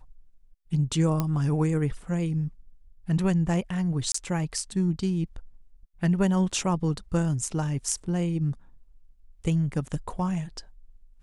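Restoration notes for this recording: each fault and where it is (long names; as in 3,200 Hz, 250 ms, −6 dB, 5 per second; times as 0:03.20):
0:01.20: click −13 dBFS
0:04.12–0:04.14: drop-out 24 ms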